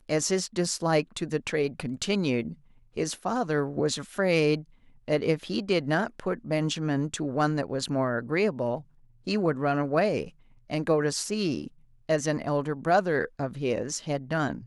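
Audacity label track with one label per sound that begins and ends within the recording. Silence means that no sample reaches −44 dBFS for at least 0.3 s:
2.960000	4.630000	sound
5.080000	8.820000	sound
9.270000	10.300000	sound
10.700000	11.680000	sound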